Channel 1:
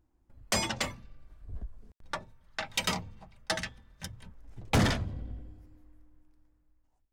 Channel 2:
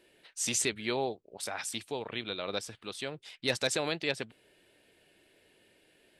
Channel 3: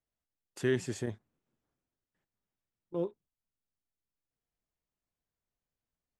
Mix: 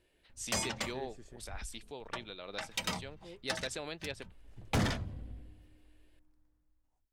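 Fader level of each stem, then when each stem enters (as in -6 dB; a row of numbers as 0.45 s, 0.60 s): -5.5 dB, -9.5 dB, -18.0 dB; 0.00 s, 0.00 s, 0.30 s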